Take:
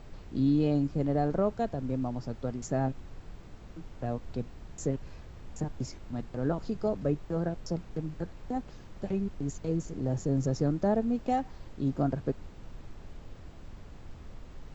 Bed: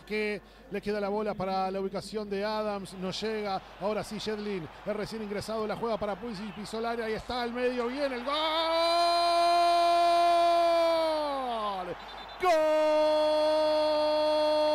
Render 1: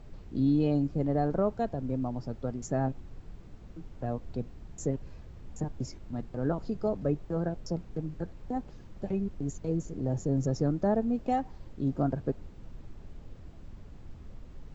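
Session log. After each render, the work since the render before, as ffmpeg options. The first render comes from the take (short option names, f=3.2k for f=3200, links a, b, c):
-af "afftdn=nr=6:nf=-49"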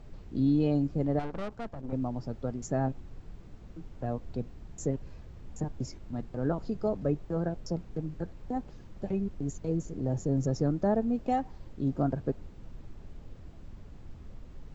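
-filter_complex "[0:a]asettb=1/sr,asplit=3[a][b][c];[a]atrim=end=1.194[d];[b]atrim=start=1.19:end=1.93,asetpts=PTS-STARTPTS,afade=t=in:d=0.004:c=qsin,afade=t=out:st=0.736:d=0.004:c=qsin,aeval=exprs='(tanh(44.7*val(0)+0.8)-tanh(0.8))/44.7':c=same[e];[c]atrim=start=1.926[f];[d][e]acrossfade=d=0.004:c1=hsin:c2=qsin[g];[g][f]acrossfade=d=0.004:c1=qsin:c2=hsin"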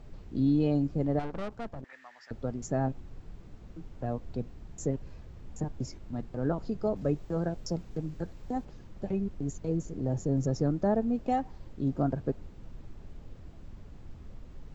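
-filter_complex "[0:a]asettb=1/sr,asplit=3[a][b][c];[a]atrim=end=1.844[d];[b]atrim=start=1.84:end=2.31,asetpts=PTS-STARTPTS,afade=t=in:d=0.004:c=qsin,afade=t=out:st=0.466:d=0.004:c=qsin,highpass=f=1.8k:t=q:w=12[e];[c]atrim=start=2.306[f];[d][e]acrossfade=d=0.004:c1=hsin:c2=qsin[g];[g][f]acrossfade=d=0.004:c1=qsin:c2=hsin,asettb=1/sr,asplit=3[h][i][j];[h]atrim=end=6.964[k];[i]atrim=start=6.96:end=8.65,asetpts=PTS-STARTPTS,afade=t=in:d=0.004:c=qsin,afade=t=out:st=1.686:d=0.004:c=qsin,highshelf=f=3.8k:g=7.5[l];[j]atrim=start=8.646[m];[k][l]acrossfade=d=0.004:c1=hsin:c2=qsin[n];[n][m]acrossfade=d=0.004:c1=qsin:c2=hsin"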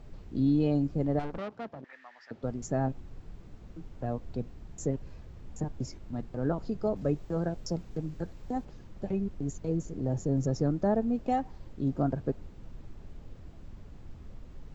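-filter_complex "[0:a]asettb=1/sr,asplit=3[a][b][c];[a]atrim=end=1.384[d];[b]atrim=start=1.38:end=2.43,asetpts=PTS-STARTPTS,afade=t=in:d=0.004:c=qsin,afade=t=out:st=1.046:d=0.004:c=qsin,highpass=170,lowpass=4.9k[e];[c]atrim=start=2.426[f];[d][e]acrossfade=d=0.004:c1=hsin:c2=qsin[g];[g][f]acrossfade=d=0.004:c1=qsin:c2=hsin"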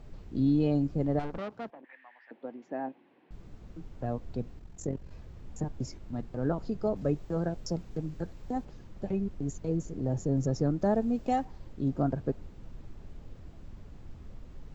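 -filter_complex "[0:a]asettb=1/sr,asplit=3[a][b][c];[a]atrim=end=1.704[d];[b]atrim=start=1.7:end=3.31,asetpts=PTS-STARTPTS,afade=t=in:d=0.004:c=qsin,afade=t=out:st=1.606:d=0.004:c=qsin,highpass=f=290:w=0.5412,highpass=f=290:w=1.3066,equalizer=f=420:t=q:w=4:g=-8,equalizer=f=630:t=q:w=4:g=-5,equalizer=f=1.3k:t=q:w=4:g=-10,lowpass=f=2.9k:w=0.5412,lowpass=f=2.9k:w=1.3066[e];[c]atrim=start=3.306[f];[d][e]acrossfade=d=0.004:c1=hsin:c2=qsin[g];[g][f]acrossfade=d=0.004:c1=qsin:c2=hsin,asettb=1/sr,asplit=3[h][i][j];[h]atrim=end=4.594[k];[i]atrim=start=4.59:end=5.11,asetpts=PTS-STARTPTS,afade=t=in:d=0.004:c=qsin,afade=t=out:st=0.516:d=0.004:c=qsin,tremolo=f=44:d=0.667[l];[j]atrim=start=5.106[m];[k][l]acrossfade=d=0.004:c1=hsin:c2=qsin[n];[n][m]acrossfade=d=0.004:c1=qsin:c2=hsin,asettb=1/sr,asplit=3[o][p][q];[o]atrim=end=10.814[r];[p]atrim=start=10.81:end=11.45,asetpts=PTS-STARTPTS,afade=t=in:d=0.004:c=qsin,afade=t=out:st=0.636:d=0.004:c=qsin,highshelf=f=4k:g=7.5[s];[q]atrim=start=11.446[t];[r][s]acrossfade=d=0.004:c1=hsin:c2=qsin[u];[u][t]acrossfade=d=0.004:c1=qsin:c2=hsin"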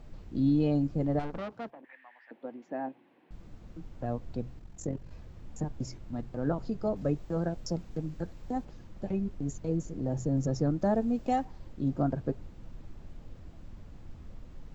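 -af "bandreject=f=410:w=12,bandreject=f=63.06:t=h:w=4,bandreject=f=126.12:t=h:w=4"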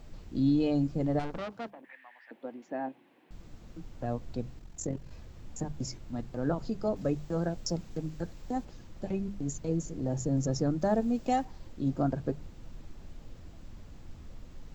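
-af "highshelf=f=3.2k:g=8,bandreject=f=50:t=h:w=6,bandreject=f=100:t=h:w=6,bandreject=f=150:t=h:w=6,bandreject=f=200:t=h:w=6"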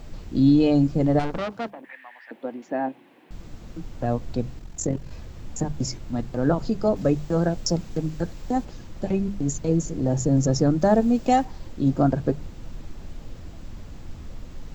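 -af "volume=9dB"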